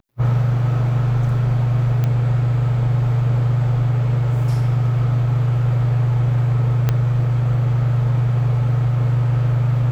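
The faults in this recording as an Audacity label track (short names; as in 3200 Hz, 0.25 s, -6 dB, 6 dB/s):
2.040000	2.040000	pop -11 dBFS
6.890000	6.890000	pop -6 dBFS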